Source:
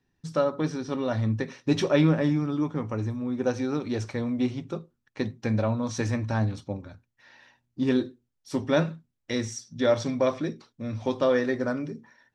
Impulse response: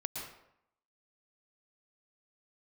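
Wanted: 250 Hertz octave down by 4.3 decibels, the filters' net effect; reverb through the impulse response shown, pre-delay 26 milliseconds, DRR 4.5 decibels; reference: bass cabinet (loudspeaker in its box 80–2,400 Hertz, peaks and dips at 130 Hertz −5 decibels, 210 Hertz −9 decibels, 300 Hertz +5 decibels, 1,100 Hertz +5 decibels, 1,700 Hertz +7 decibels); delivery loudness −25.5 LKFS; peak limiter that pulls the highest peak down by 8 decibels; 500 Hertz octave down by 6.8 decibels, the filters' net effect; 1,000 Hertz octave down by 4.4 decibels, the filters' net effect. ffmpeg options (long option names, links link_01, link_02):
-filter_complex "[0:a]equalizer=frequency=250:width_type=o:gain=-4,equalizer=frequency=500:width_type=o:gain=-5.5,equalizer=frequency=1000:width_type=o:gain=-8,alimiter=limit=-22.5dB:level=0:latency=1,asplit=2[link_01][link_02];[1:a]atrim=start_sample=2205,adelay=26[link_03];[link_02][link_03]afir=irnorm=-1:irlink=0,volume=-5.5dB[link_04];[link_01][link_04]amix=inputs=2:normalize=0,highpass=frequency=80:width=0.5412,highpass=frequency=80:width=1.3066,equalizer=frequency=130:width_type=q:width=4:gain=-5,equalizer=frequency=210:width_type=q:width=4:gain=-9,equalizer=frequency=300:width_type=q:width=4:gain=5,equalizer=frequency=1100:width_type=q:width=4:gain=5,equalizer=frequency=1700:width_type=q:width=4:gain=7,lowpass=frequency=2400:width=0.5412,lowpass=frequency=2400:width=1.3066,volume=7.5dB"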